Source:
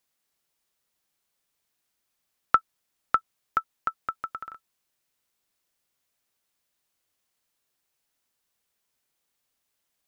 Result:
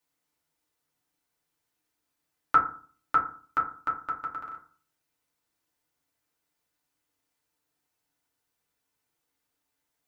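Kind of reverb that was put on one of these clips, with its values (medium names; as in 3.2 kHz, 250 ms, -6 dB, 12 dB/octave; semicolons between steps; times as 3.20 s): FDN reverb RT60 0.44 s, low-frequency decay 1.25×, high-frequency decay 0.35×, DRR -4.5 dB; trim -6 dB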